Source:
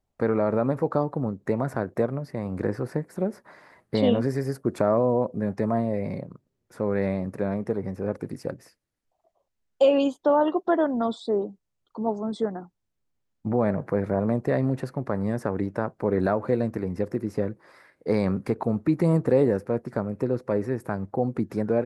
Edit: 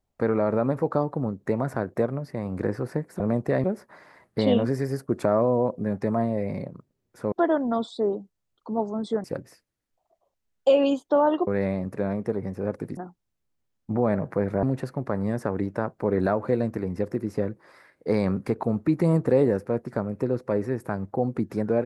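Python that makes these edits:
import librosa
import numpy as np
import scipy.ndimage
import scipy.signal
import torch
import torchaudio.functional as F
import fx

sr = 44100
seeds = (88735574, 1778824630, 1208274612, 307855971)

y = fx.edit(x, sr, fx.swap(start_s=6.88, length_s=1.5, other_s=10.61, other_length_s=1.92),
    fx.move(start_s=14.19, length_s=0.44, to_s=3.2), tone=tone)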